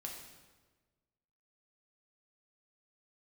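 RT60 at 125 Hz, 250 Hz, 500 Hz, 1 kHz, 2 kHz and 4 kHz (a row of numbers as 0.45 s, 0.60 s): 1.6 s, 1.5 s, 1.4 s, 1.3 s, 1.1 s, 1.0 s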